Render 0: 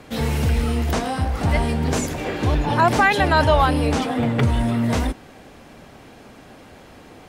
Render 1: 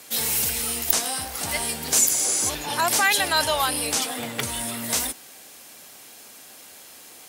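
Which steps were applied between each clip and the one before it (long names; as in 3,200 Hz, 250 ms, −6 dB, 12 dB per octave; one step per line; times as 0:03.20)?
RIAA equalisation recording
healed spectral selection 0:02.12–0:02.47, 1,600–11,000 Hz before
high-shelf EQ 3,800 Hz +11.5 dB
level −7 dB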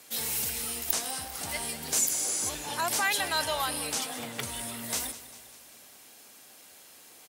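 repeating echo 199 ms, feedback 56%, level −15 dB
level −7.5 dB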